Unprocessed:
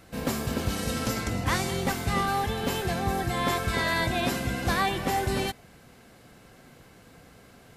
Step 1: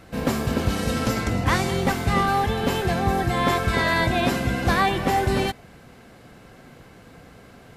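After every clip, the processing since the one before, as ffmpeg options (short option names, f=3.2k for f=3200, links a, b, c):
-af "highshelf=f=4.3k:g=-7.5,volume=6dB"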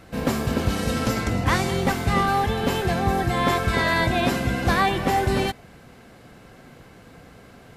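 -af anull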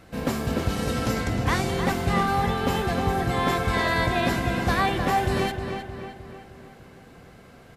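-filter_complex "[0:a]asplit=2[a][b];[b]adelay=310,lowpass=f=3.7k:p=1,volume=-6.5dB,asplit=2[c][d];[d]adelay=310,lowpass=f=3.7k:p=1,volume=0.53,asplit=2[e][f];[f]adelay=310,lowpass=f=3.7k:p=1,volume=0.53,asplit=2[g][h];[h]adelay=310,lowpass=f=3.7k:p=1,volume=0.53,asplit=2[i][j];[j]adelay=310,lowpass=f=3.7k:p=1,volume=0.53,asplit=2[k][l];[l]adelay=310,lowpass=f=3.7k:p=1,volume=0.53,asplit=2[m][n];[n]adelay=310,lowpass=f=3.7k:p=1,volume=0.53[o];[a][c][e][g][i][k][m][o]amix=inputs=8:normalize=0,volume=-3dB"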